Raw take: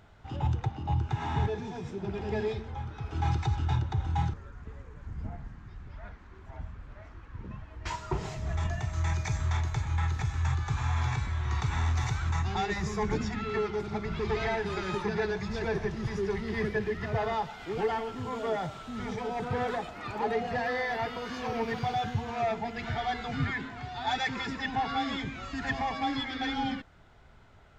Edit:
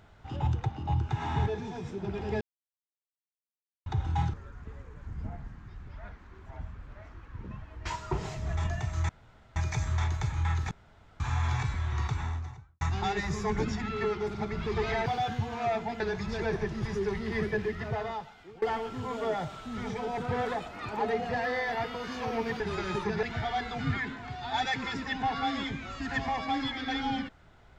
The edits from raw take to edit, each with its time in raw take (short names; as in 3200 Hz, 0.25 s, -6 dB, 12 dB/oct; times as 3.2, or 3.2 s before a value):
2.41–3.86 mute
9.09 insert room tone 0.47 s
10.24–10.73 room tone
11.41–12.34 studio fade out
14.59–15.22 swap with 21.82–22.76
16.86–17.84 fade out, to -22 dB